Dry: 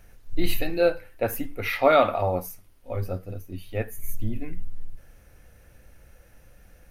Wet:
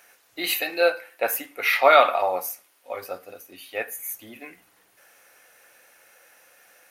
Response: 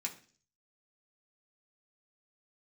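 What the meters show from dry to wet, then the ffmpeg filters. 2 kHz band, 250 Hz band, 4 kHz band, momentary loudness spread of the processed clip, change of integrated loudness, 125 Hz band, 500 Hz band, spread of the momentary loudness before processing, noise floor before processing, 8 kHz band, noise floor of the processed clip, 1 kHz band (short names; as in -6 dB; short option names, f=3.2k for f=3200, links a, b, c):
+7.5 dB, -8.5 dB, +7.0 dB, 22 LU, +4.0 dB, under -25 dB, +1.0 dB, 19 LU, -55 dBFS, +7.5 dB, -62 dBFS, +5.0 dB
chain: -filter_complex "[0:a]highpass=720,asplit=2[a][b];[1:a]atrim=start_sample=2205[c];[b][c]afir=irnorm=-1:irlink=0,volume=-9.5dB[d];[a][d]amix=inputs=2:normalize=0,volume=5.5dB"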